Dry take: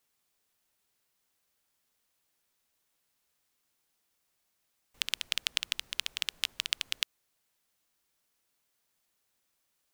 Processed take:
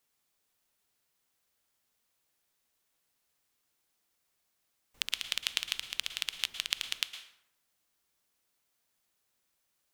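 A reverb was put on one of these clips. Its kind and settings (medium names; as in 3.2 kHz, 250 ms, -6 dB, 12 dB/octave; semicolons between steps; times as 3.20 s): plate-style reverb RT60 0.74 s, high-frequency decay 0.65×, pre-delay 100 ms, DRR 9.5 dB; trim -1 dB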